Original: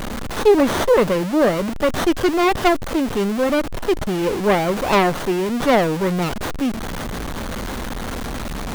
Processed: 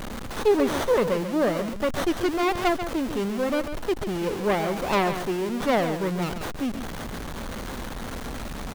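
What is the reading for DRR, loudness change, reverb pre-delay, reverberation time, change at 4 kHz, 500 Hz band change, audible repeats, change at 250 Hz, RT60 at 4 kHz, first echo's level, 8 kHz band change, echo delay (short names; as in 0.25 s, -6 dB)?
none, -6.5 dB, none, none, -6.5 dB, -6.5 dB, 1, -6.5 dB, none, -9.5 dB, -6.5 dB, 0.14 s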